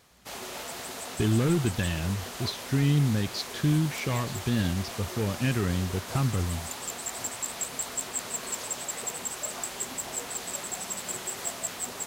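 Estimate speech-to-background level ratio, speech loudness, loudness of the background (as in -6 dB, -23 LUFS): 6.0 dB, -28.5 LUFS, -34.5 LUFS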